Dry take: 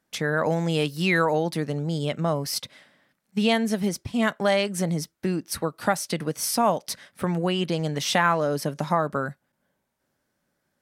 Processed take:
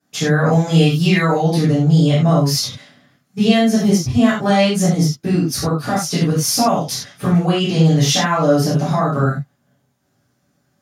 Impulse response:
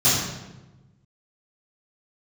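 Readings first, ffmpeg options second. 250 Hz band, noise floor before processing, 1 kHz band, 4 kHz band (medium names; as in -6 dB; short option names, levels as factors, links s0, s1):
+11.5 dB, -77 dBFS, +5.5 dB, +9.0 dB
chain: -filter_complex "[0:a]alimiter=limit=0.188:level=0:latency=1:release=160[s0];[1:a]atrim=start_sample=2205,afade=t=out:st=0.16:d=0.01,atrim=end_sample=7497[s1];[s0][s1]afir=irnorm=-1:irlink=0,volume=0.355"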